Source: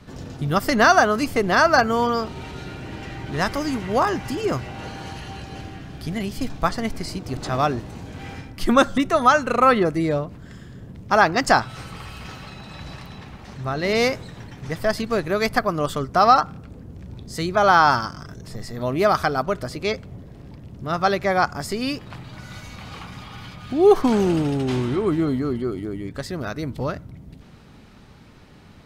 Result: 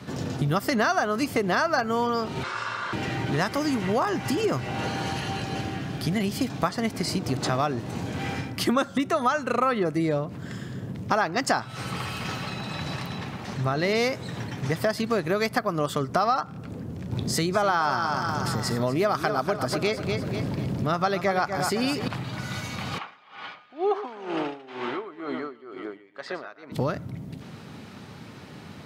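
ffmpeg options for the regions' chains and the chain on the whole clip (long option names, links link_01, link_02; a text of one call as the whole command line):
ffmpeg -i in.wav -filter_complex "[0:a]asettb=1/sr,asplit=3[link_01][link_02][link_03];[link_01]atrim=end=2.434[link_04];[link_02]atrim=start=2.43:end=2.93,asetpts=PTS-STARTPTS,afade=type=in:duration=0.004:curve=qsin,afade=type=out:start_time=0.496:duration=0.004:curve=qsin,lowpass=frequency=7800:width=0.5412,lowpass=frequency=7800:width=1.3066,bandreject=frequency=510:width=6.1,aeval=exprs='val(0)*sin(2*PI*1300*n/s)':channel_layout=same[link_05];[link_03]atrim=start=2.926[link_06];[link_04][link_05]acrossfade=duration=0.004:curve1=hsin:curve2=qsin[link_07];[link_07][link_06]acrossfade=duration=0.004:curve1=qsin:curve2=hsin,asettb=1/sr,asplit=3[link_08][link_09][link_10];[link_08]atrim=end=17.124[link_11];[link_09]atrim=start=17.12:end=22.08,asetpts=PTS-STARTPTS,afade=type=in:duration=0.004:curve=qsin,afade=type=out:start_time=4.956:duration=0.004:curve=qsin,acompressor=mode=upward:threshold=-23dB:ratio=2.5:attack=3.2:release=140:knee=2.83:detection=peak,aecho=1:1:243|486|729|972:0.355|0.135|0.0512|0.0195,atrim=end_sample=218736[link_12];[link_10]atrim=start=22.076[link_13];[link_11][link_12]acrossfade=duration=0.004:curve1=hsin:curve2=qsin[link_14];[link_14][link_13]acrossfade=duration=0.004:curve1=qsin:curve2=hsin,asettb=1/sr,asplit=3[link_15][link_16][link_17];[link_15]atrim=end=22.984[link_18];[link_16]atrim=start=22.98:end=26.72,asetpts=PTS-STARTPTS,afade=type=in:duration=0.004:curve=qsin,afade=type=out:start_time=3.736:duration=0.004:curve=qsin,highpass=620,lowpass=2700,aecho=1:1:117:0.316,atrim=end_sample=164934,aeval=exprs='val(0)*pow(10,-19*(0.5-0.5*cos(2*PI*2.1*n/s))/20)':channel_layout=same[link_19];[link_17]atrim=start=26.716[link_20];[link_18][link_19]acrossfade=duration=0.004:curve1=hsin:curve2=qsin[link_21];[link_21][link_20]acrossfade=duration=0.004:curve1=qsin:curve2=hsin,highpass=frequency=98:width=0.5412,highpass=frequency=98:width=1.3066,acompressor=threshold=-29dB:ratio=4,volume=6dB" out.wav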